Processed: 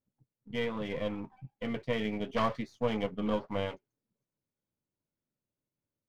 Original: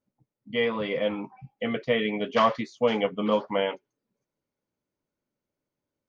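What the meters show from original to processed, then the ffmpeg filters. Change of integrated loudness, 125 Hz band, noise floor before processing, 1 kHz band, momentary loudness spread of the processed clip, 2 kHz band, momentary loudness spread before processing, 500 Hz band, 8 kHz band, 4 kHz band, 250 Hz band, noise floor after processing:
-7.5 dB, 0.0 dB, under -85 dBFS, -9.0 dB, 9 LU, -9.0 dB, 10 LU, -8.5 dB, n/a, -9.0 dB, -4.5 dB, under -85 dBFS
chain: -af "aeval=exprs='if(lt(val(0),0),0.447*val(0),val(0))':c=same,equalizer=f=110:w=0.62:g=9,volume=-7dB"

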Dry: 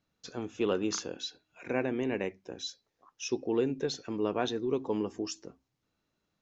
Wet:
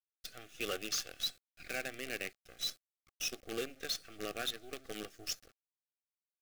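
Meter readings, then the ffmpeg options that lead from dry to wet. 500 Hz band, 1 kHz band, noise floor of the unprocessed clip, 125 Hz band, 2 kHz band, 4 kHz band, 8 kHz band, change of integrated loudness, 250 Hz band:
-12.5 dB, -9.0 dB, -82 dBFS, -14.5 dB, 0.0 dB, +2.0 dB, n/a, -6.0 dB, -16.0 dB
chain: -af "lowpass=3.7k,agate=range=-33dB:threshold=-54dB:ratio=3:detection=peak,aderivative,aphaser=in_gain=1:out_gain=1:delay=1.5:decay=0.25:speed=1.4:type=triangular,asoftclip=type=tanh:threshold=-38.5dB,acrusher=bits=9:dc=4:mix=0:aa=0.000001,asuperstop=centerf=950:order=8:qfactor=2.8,volume=12dB"

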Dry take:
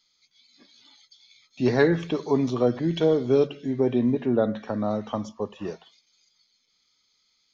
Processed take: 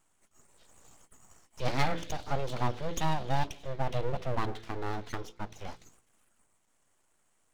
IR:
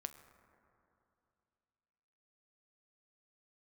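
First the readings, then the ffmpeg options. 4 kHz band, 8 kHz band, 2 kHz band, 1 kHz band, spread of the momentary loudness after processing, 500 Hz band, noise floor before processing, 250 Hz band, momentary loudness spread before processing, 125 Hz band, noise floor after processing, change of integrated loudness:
-2.5 dB, n/a, -5.0 dB, +1.0 dB, 12 LU, -14.0 dB, -70 dBFS, -16.0 dB, 12 LU, -4.5 dB, -72 dBFS, -10.5 dB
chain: -af "equalizer=f=3.2k:t=o:w=0.76:g=8.5,aeval=exprs='abs(val(0))':c=same,bandreject=f=56.41:t=h:w=4,bandreject=f=112.82:t=h:w=4,bandreject=f=169.23:t=h:w=4,bandreject=f=225.64:t=h:w=4,bandreject=f=282.05:t=h:w=4,bandreject=f=338.46:t=h:w=4,bandreject=f=394.87:t=h:w=4,bandreject=f=451.28:t=h:w=4,bandreject=f=507.69:t=h:w=4,volume=-6dB"

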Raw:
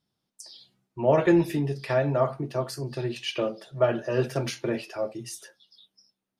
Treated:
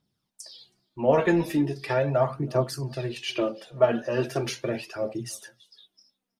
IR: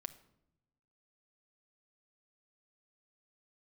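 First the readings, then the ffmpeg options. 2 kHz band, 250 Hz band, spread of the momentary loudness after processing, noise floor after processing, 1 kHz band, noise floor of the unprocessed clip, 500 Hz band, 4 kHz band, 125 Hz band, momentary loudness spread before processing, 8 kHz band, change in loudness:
+1.0 dB, -0.5 dB, 15 LU, -81 dBFS, +1.0 dB, -83 dBFS, +0.5 dB, +0.5 dB, -0.5 dB, 18 LU, +1.5 dB, 0.0 dB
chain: -filter_complex "[0:a]asplit=2[a][b];[b]adelay=320.7,volume=-26dB,highshelf=f=4k:g=-7.22[c];[a][c]amix=inputs=2:normalize=0,aphaser=in_gain=1:out_gain=1:delay=4.6:decay=0.49:speed=0.39:type=triangular"

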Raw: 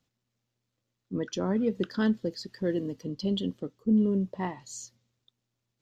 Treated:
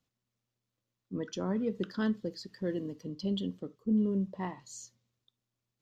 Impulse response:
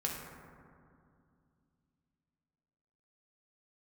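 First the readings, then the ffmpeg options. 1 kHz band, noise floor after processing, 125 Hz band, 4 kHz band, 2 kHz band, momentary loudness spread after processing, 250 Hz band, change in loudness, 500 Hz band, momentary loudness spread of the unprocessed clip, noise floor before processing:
-4.5 dB, under -85 dBFS, -4.0 dB, -5.0 dB, -4.5 dB, 13 LU, -4.5 dB, -4.5 dB, -5.0 dB, 12 LU, -83 dBFS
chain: -filter_complex "[0:a]asplit=2[a][b];[b]equalizer=f=1.1k:t=o:w=0.37:g=13[c];[1:a]atrim=start_sample=2205,afade=t=out:st=0.15:d=0.01,atrim=end_sample=7056,asetrate=52920,aresample=44100[d];[c][d]afir=irnorm=-1:irlink=0,volume=-16dB[e];[a][e]amix=inputs=2:normalize=0,volume=-6dB"

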